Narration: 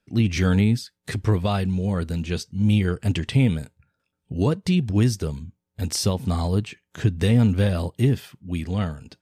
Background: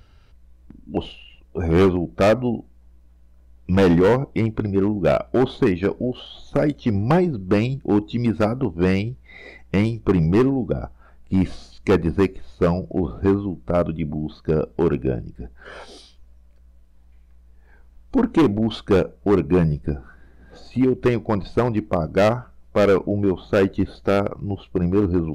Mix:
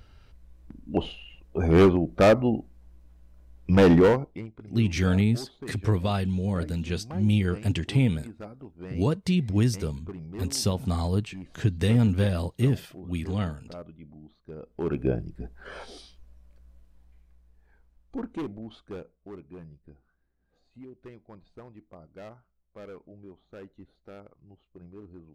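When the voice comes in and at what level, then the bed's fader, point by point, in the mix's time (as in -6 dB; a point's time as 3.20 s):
4.60 s, -3.5 dB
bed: 4.04 s -1.5 dB
4.54 s -22 dB
14.56 s -22 dB
15.03 s -3 dB
16.79 s -3 dB
19.56 s -27.5 dB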